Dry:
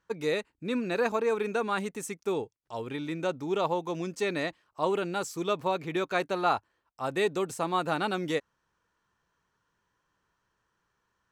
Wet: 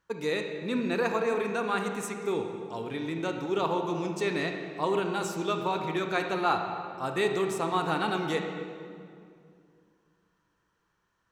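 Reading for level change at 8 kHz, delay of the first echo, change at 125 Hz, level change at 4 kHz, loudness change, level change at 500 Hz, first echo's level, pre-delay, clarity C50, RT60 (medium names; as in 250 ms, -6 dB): 0.0 dB, no echo, +2.5 dB, +1.0 dB, +0.5 dB, 0.0 dB, no echo, 26 ms, 5.0 dB, 2.3 s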